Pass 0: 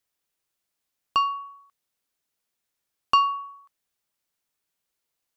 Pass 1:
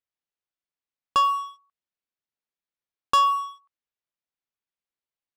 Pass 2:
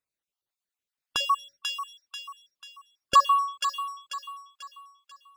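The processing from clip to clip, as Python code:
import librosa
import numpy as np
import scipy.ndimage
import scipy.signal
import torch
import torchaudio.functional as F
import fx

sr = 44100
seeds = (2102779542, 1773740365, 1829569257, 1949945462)

y1 = scipy.signal.sosfilt(scipy.signal.butter(2, 4100.0, 'lowpass', fs=sr, output='sos'), x)
y1 = fx.leveller(y1, sr, passes=3)
y1 = y1 * 10.0 ** (-5.0 / 20.0)
y2 = fx.spec_dropout(y1, sr, seeds[0], share_pct=43)
y2 = fx.echo_wet_highpass(y2, sr, ms=490, feedback_pct=41, hz=1700.0, wet_db=-3)
y2 = y2 * 10.0 ** (4.0 / 20.0)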